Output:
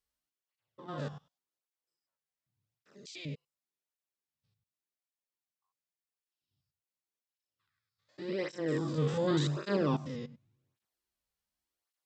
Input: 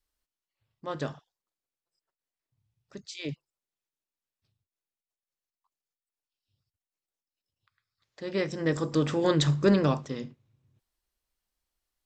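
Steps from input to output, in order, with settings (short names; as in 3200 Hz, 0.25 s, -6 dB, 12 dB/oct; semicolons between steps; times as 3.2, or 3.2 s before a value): stepped spectrum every 0.1 s; tape flanging out of phase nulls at 0.88 Hz, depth 3.4 ms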